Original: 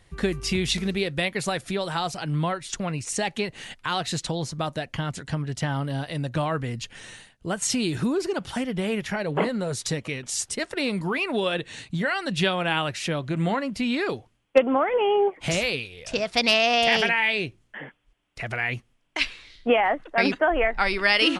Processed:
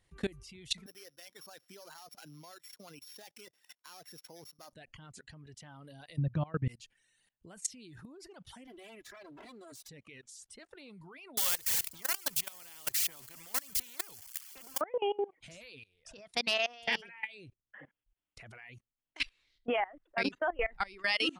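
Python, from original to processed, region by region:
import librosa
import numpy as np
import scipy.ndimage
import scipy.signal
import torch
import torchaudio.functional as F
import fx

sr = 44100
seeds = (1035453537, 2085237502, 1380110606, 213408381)

y = fx.chain(x, sr, fx.sample_sort(block=8),
    fx.highpass(hz=230.0, slope=12),
    fx.low_shelf(hz=400.0, db=-7.5), at=(0.86, 4.73))
y = fx.chain(y, sr, fx.lowpass(hz=3200.0, slope=12),
    fx.peak_eq(hz=120.0, db=15.0, octaves=2.2), at=(6.18, 6.68))
y = fx.chain(y, sr, fx.lower_of_two(delay_ms=3.0),
    fx.highpass(hz=130.0, slope=6), at=(8.67, 9.89))
y = fx.chain(y, sr, fx.crossing_spikes(level_db=-23.5),
    fx.notch(hz=3800.0, q=6.5),
    fx.spectral_comp(ratio=4.0), at=(11.37, 14.81))
y = fx.dereverb_blind(y, sr, rt60_s=1.7)
y = fx.high_shelf(y, sr, hz=5500.0, db=4.5)
y = fx.level_steps(y, sr, step_db=22)
y = y * librosa.db_to_amplitude(-7.5)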